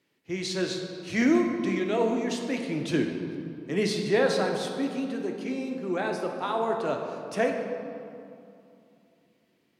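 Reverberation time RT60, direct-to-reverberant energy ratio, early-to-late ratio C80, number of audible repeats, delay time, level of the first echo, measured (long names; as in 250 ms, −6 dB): 2.7 s, 2.0 dB, 5.5 dB, no echo audible, no echo audible, no echo audible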